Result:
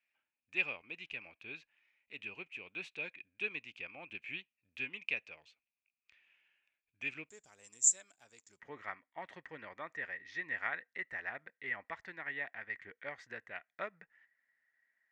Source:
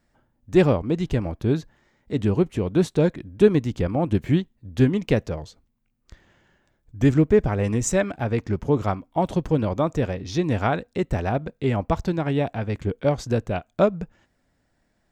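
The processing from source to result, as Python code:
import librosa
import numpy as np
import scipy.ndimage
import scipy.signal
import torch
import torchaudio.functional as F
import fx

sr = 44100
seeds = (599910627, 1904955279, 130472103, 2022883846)

y = fx.bandpass_q(x, sr, hz=fx.steps((0.0, 2500.0), (7.29, 7300.0), (8.6, 1900.0)), q=13.0)
y = y * librosa.db_to_amplitude(6.5)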